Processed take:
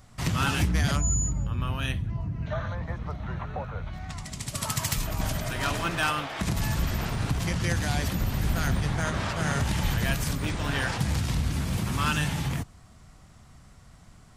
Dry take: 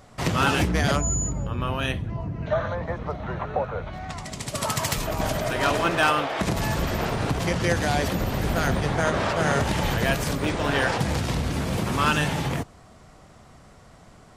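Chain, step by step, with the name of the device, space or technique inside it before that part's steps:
smiley-face EQ (low-shelf EQ 170 Hz +7 dB; parametric band 490 Hz −8 dB 1.5 octaves; high-shelf EQ 6,000 Hz +5.5 dB)
level −4.5 dB

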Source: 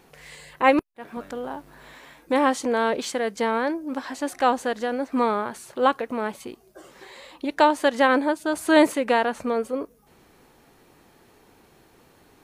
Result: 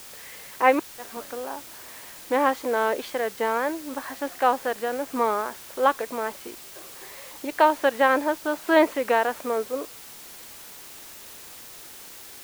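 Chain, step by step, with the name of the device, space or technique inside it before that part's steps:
wax cylinder (band-pass filter 350–2,800 Hz; tape wow and flutter; white noise bed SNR 17 dB)

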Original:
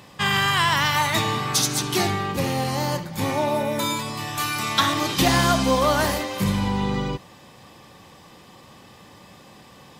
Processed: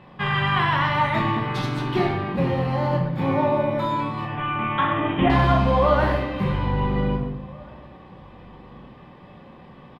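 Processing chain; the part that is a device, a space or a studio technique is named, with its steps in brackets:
0:04.25–0:05.30: Butterworth low-pass 3,400 Hz 96 dB per octave
shout across a valley (high-frequency loss of the air 470 metres; slap from a distant wall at 290 metres, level −24 dB)
rectangular room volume 220 cubic metres, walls mixed, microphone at 1 metre

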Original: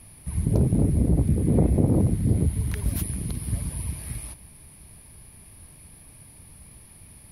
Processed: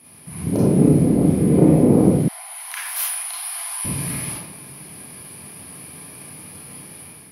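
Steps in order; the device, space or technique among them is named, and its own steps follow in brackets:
far laptop microphone (convolution reverb RT60 0.85 s, pre-delay 27 ms, DRR −6 dB; high-pass filter 140 Hz 24 dB per octave; automatic gain control gain up to 7 dB)
0:02.28–0:03.85: Butterworth high-pass 700 Hz 96 dB per octave

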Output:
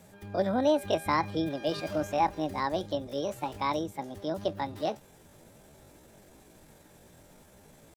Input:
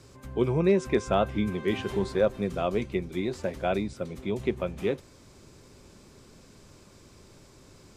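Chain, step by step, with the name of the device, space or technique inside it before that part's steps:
chipmunk voice (pitch shifter +7.5 semitones)
level −2.5 dB

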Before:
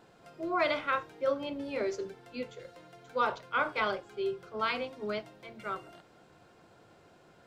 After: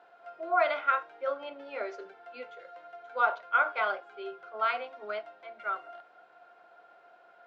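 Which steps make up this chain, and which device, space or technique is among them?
tin-can telephone (band-pass filter 610–2,800 Hz; hollow resonant body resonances 700/1,400 Hz, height 12 dB)

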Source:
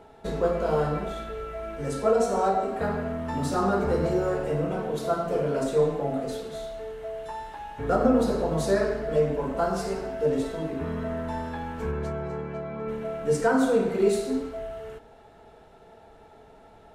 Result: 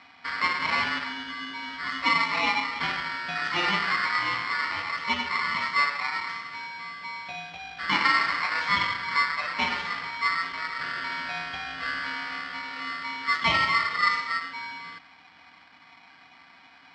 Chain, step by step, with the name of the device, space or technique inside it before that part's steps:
ring modulator pedal into a guitar cabinet (ring modulator with a square carrier 1,600 Hz; loudspeaker in its box 81–4,500 Hz, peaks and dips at 83 Hz +6 dB, 170 Hz +6 dB, 260 Hz +3 dB, 3,300 Hz +6 dB)
level −1.5 dB

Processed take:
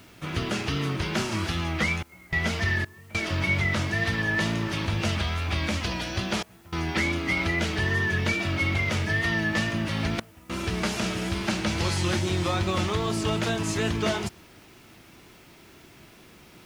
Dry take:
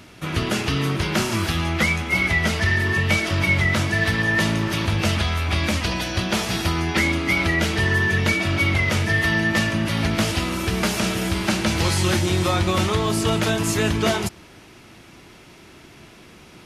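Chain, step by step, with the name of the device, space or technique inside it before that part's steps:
worn cassette (low-pass filter 8,400 Hz 12 dB per octave; tape wow and flutter; tape dropouts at 0:02.03/0:02.85/0:06.43/0:10.20, 293 ms −22 dB; white noise bed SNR 34 dB)
level −5.5 dB

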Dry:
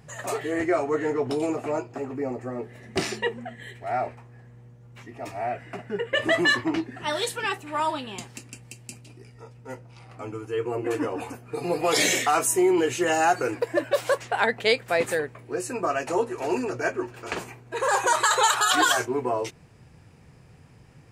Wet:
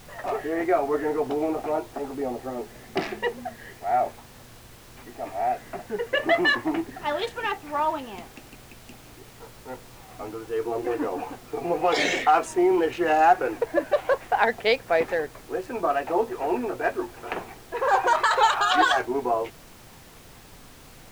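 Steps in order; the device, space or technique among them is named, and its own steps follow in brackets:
adaptive Wiener filter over 9 samples
horn gramophone (band-pass filter 190–4,000 Hz; parametric band 760 Hz +6 dB 0.4 octaves; tape wow and flutter; pink noise bed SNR 22 dB)

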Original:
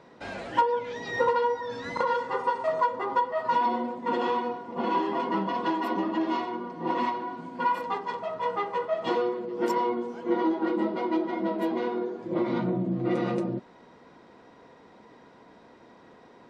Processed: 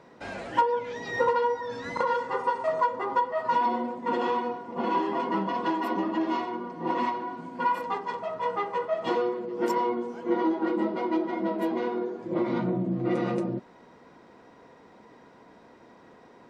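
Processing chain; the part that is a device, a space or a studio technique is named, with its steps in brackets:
exciter from parts (in parallel at −10 dB: high-pass filter 3,400 Hz 24 dB per octave + soft clipping −39.5 dBFS, distortion −18 dB)

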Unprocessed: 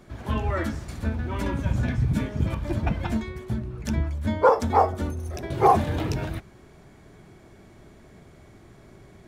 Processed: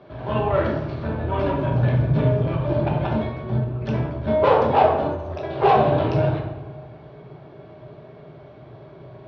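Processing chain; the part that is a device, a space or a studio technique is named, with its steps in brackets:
Butterworth low-pass 6,100 Hz 36 dB per octave
analogue delay pedal into a guitar amplifier (bucket-brigade delay 87 ms, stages 2,048, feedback 78%, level −23 dB; tube saturation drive 22 dB, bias 0.55; loudspeaker in its box 100–3,800 Hz, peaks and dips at 130 Hz +7 dB, 210 Hz −8 dB, 440 Hz +4 dB, 630 Hz +9 dB, 980 Hz +4 dB, 2,000 Hz −6 dB)
0:05.07–0:05.63: low-shelf EQ 350 Hz −10 dB
rectangular room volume 260 cubic metres, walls mixed, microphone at 1.2 metres
level +3.5 dB

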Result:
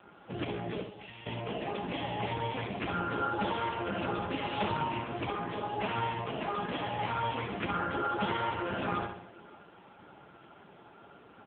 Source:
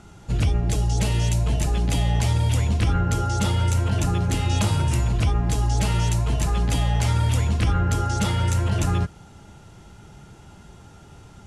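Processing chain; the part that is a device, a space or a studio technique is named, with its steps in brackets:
0:00.82–0:01.26: guitar amp tone stack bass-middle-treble 5-5-5
0:05.24–0:05.94: mains-hum notches 60/120/180/240/300 Hz
repeating echo 67 ms, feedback 47%, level −6 dB
0:03.91–0:04.69: dynamic equaliser 6,100 Hz, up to +4 dB, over −46 dBFS, Q 1.7
satellite phone (band-pass filter 300–3,300 Hz; single-tap delay 559 ms −23.5 dB; AMR narrowband 5.9 kbit/s 8,000 Hz)

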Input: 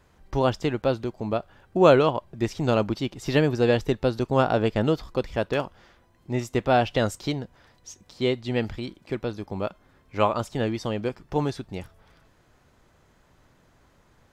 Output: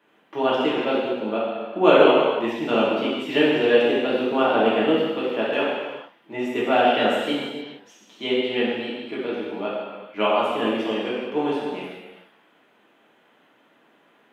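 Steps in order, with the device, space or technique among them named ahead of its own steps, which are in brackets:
high-pass filter 230 Hz 24 dB per octave
high shelf with overshoot 3,800 Hz −7 dB, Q 3
reverb whose tail is shaped and stops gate 490 ms falling, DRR −7.5 dB
exciter from parts (in parallel at −10 dB: high-pass filter 4,400 Hz 24 dB per octave + soft clipping −37 dBFS, distortion −14 dB + high-pass filter 3,900 Hz 24 dB per octave)
on the sum: level −4.5 dB

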